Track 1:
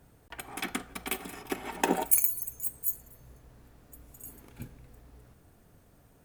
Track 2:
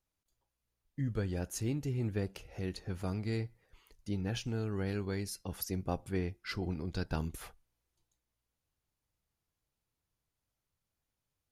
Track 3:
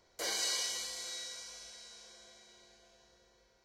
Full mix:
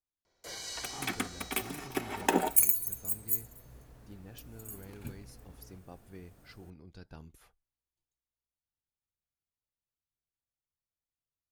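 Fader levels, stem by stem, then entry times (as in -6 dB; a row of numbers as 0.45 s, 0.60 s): 0.0 dB, -14.5 dB, -7.0 dB; 0.45 s, 0.00 s, 0.25 s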